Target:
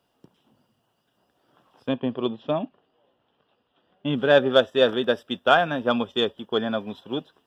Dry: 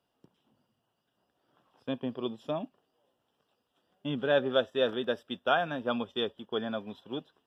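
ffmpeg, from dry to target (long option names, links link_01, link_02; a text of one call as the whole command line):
ffmpeg -i in.wav -filter_complex "[0:a]asettb=1/sr,asplit=3[link_01][link_02][link_03];[link_01]atrim=end=1.894[link_04];[link_02]atrim=start=1.89:end=4.14,asetpts=PTS-STARTPTS,afade=type=in:duration=0.004:curve=qsin,afade=type=out:start_time=2.246:duration=0.004:curve=qsin,lowpass=frequency=3800:width=0.5412,lowpass=frequency=3800:width=1.3066[link_05];[link_03]atrim=start=4.136[link_06];[link_04][link_05]acrossfade=duration=0.004:curve1=hsin:curve2=qsin[link_07];[link_07][link_06]acrossfade=duration=0.004:curve1=qsin:curve2=hsin,aeval=exprs='0.251*(cos(1*acos(clip(val(0)/0.251,-1,1)))-cos(1*PI/2))+0.00447*(cos(7*acos(clip(val(0)/0.251,-1,1)))-cos(7*PI/2))':channel_layout=same,volume=9dB" out.wav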